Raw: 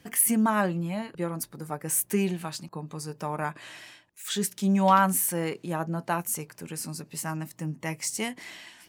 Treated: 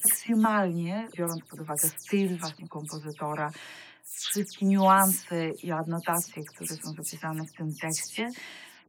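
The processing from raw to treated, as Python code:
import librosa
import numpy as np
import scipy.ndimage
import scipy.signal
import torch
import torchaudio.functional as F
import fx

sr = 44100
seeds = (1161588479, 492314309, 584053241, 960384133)

y = fx.spec_delay(x, sr, highs='early', ms=136)
y = scipy.signal.sosfilt(scipy.signal.butter(2, 100.0, 'highpass', fs=sr, output='sos'), y)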